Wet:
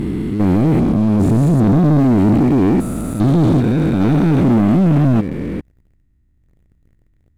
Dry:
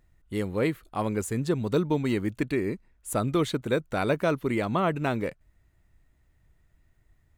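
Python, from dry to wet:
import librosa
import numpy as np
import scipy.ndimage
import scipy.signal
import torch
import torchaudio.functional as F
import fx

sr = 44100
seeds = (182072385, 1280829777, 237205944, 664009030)

y = fx.spec_steps(x, sr, hold_ms=400)
y = fx.low_shelf_res(y, sr, hz=400.0, db=12.5, q=1.5)
y = fx.leveller(y, sr, passes=3)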